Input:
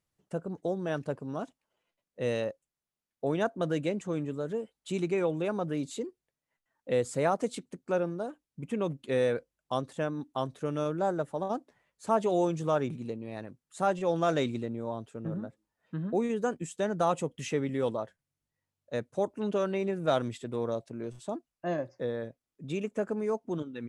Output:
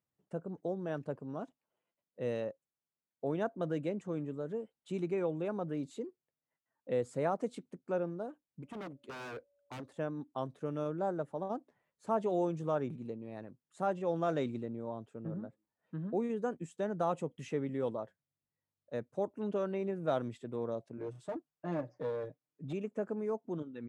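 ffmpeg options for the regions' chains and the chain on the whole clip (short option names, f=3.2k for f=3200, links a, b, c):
-filter_complex "[0:a]asettb=1/sr,asplit=3[a][b][c];[a]atrim=end=8.624[d];[b]atrim=start=8.62:end=9.99,asetpts=PTS-STARTPTS,afade=t=in:d=0.004:c=qsin,afade=t=out:st=1.366:d=0.004:c=qsin,equalizer=f=160:w=3.1:g=-14,aeval=exprs='0.0251*(abs(mod(val(0)/0.0251+3,4)-2)-1)':c=same,aeval=exprs='val(0)+0.000398*sin(2*PI*570*n/s)':c=same[e];[c]atrim=start=9.986[f];[d][e]acrossfade=d=0.004:c1=hsin:c2=qsin[g];[g][f]acrossfade=d=0.004:c1=qsin:c2=hsin,asettb=1/sr,asplit=3[h][i][j];[h]atrim=end=20.974[k];[i]atrim=start=20.97:end=22.73,asetpts=PTS-STARTPTS,afade=t=in:d=0.004:c=qsin,afade=t=out:st=1.756:d=0.004:c=qsin,aecho=1:1:6.6:0.92,atrim=end_sample=77616,aeval=exprs='clip(val(0),-1,0.0282)':c=same[l];[j]atrim=start=22.726[m];[k][l]acrossfade=d=0.004:c1=hsin:c2=qsin[n];[n][m]acrossfade=d=0.004:c1=qsin:c2=hsin,highpass=96,highshelf=f=2.2k:g=-10.5,volume=-4.5dB"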